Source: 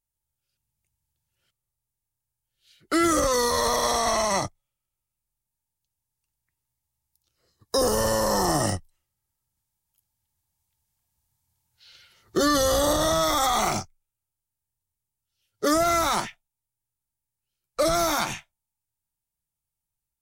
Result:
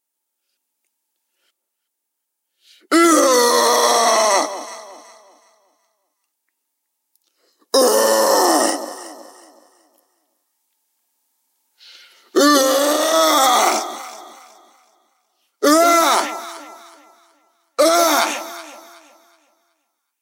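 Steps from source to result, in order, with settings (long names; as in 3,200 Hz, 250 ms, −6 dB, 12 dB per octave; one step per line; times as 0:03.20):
0:12.61–0:13.14: tube saturation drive 18 dB, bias 0.6
linear-phase brick-wall high-pass 230 Hz
delay that swaps between a low-pass and a high-pass 186 ms, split 960 Hz, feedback 54%, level −11 dB
level +9 dB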